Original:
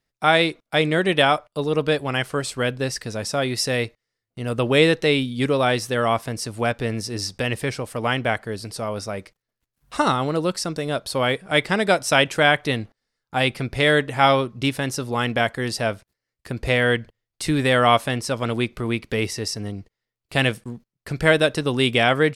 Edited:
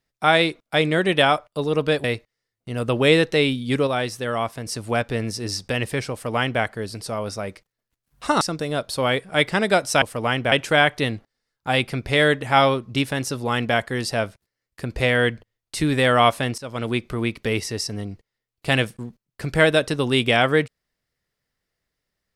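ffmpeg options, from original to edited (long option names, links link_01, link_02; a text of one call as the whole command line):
ffmpeg -i in.wav -filter_complex "[0:a]asplit=8[link_01][link_02][link_03][link_04][link_05][link_06][link_07][link_08];[link_01]atrim=end=2.042[link_09];[link_02]atrim=start=3.738:end=5.572[link_10];[link_03]atrim=start=5.568:end=6.362,asetpts=PTS-STARTPTS,volume=-4dB[link_11];[link_04]atrim=start=6.358:end=10.112[link_12];[link_05]atrim=start=10.578:end=12.192[link_13];[link_06]atrim=start=7.818:end=8.322[link_14];[link_07]atrim=start=12.188:end=18.25,asetpts=PTS-STARTPTS,afade=type=out:start_time=6.058:duration=0.004:curve=hsin:silence=0.149624[link_15];[link_08]atrim=start=18.25,asetpts=PTS-STARTPTS,afade=type=in:duration=0.49:curve=qsin:silence=0.149624[link_16];[link_09][link_10]acrossfade=duration=0.004:curve1=hsin:curve2=hsin[link_17];[link_17][link_11]acrossfade=duration=0.004:curve1=hsin:curve2=hsin[link_18];[link_18][link_12]acrossfade=duration=0.004:curve1=hsin:curve2=hsin[link_19];[link_19][link_13]acrossfade=duration=0.004:curve1=hsin:curve2=hsin[link_20];[link_20][link_14]acrossfade=duration=0.004:curve1=hsin:curve2=hsin[link_21];[link_15][link_16]concat=n=2:v=0:a=1[link_22];[link_21][link_22]acrossfade=duration=0.004:curve1=hsin:curve2=hsin" out.wav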